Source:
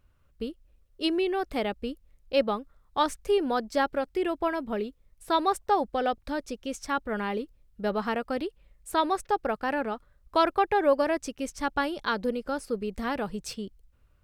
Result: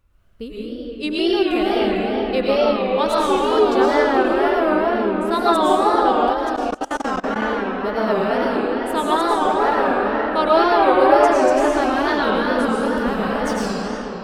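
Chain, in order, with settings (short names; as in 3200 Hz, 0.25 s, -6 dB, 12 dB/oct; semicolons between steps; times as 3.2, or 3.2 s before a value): digital reverb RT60 5 s, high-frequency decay 0.6×, pre-delay 70 ms, DRR -8.5 dB; wow and flutter 120 cents; 6.33–7.42 level quantiser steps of 23 dB; gain +1.5 dB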